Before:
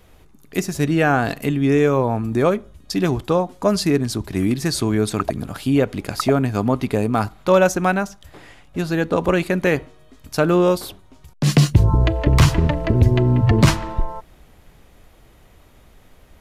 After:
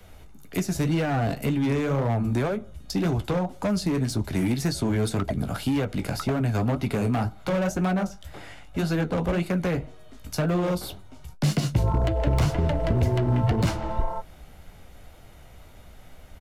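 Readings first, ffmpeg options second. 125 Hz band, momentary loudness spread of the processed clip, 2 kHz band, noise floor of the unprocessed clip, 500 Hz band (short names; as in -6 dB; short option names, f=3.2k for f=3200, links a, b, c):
-5.5 dB, 8 LU, -9.0 dB, -50 dBFS, -9.0 dB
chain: -filter_complex "[0:a]flanger=delay=10:depth=7.2:regen=-40:speed=1.9:shape=sinusoidal,acrossover=split=290|700[a][b][c];[a]acompressor=threshold=-28dB:ratio=4[d];[b]acompressor=threshold=-30dB:ratio=4[e];[c]acompressor=threshold=-38dB:ratio=4[f];[d][e][f]amix=inputs=3:normalize=0,aecho=1:1:1.4:0.3,acrossover=split=200[g][h];[h]asoftclip=type=hard:threshold=-28.5dB[i];[g][i]amix=inputs=2:normalize=0,volume=4.5dB"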